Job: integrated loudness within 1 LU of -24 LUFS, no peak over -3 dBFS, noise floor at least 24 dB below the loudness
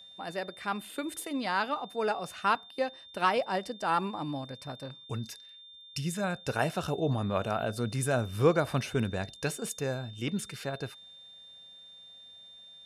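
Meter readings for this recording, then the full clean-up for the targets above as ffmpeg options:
steady tone 3600 Hz; tone level -49 dBFS; loudness -32.0 LUFS; peak -12.0 dBFS; loudness target -24.0 LUFS
-> -af "bandreject=f=3.6k:w=30"
-af "volume=8dB"

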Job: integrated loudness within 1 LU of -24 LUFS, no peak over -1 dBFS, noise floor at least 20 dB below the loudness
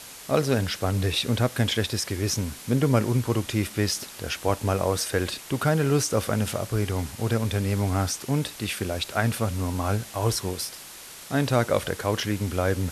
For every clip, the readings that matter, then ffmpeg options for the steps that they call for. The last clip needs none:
noise floor -43 dBFS; noise floor target -46 dBFS; loudness -26.0 LUFS; peak -7.5 dBFS; loudness target -24.0 LUFS
-> -af "afftdn=nr=6:nf=-43"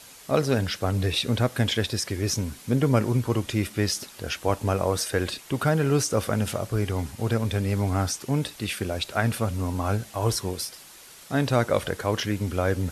noise floor -48 dBFS; loudness -26.0 LUFS; peak -8.0 dBFS; loudness target -24.0 LUFS
-> -af "volume=2dB"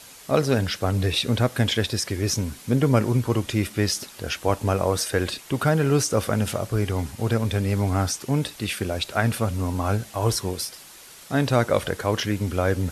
loudness -24.0 LUFS; peak -6.0 dBFS; noise floor -46 dBFS

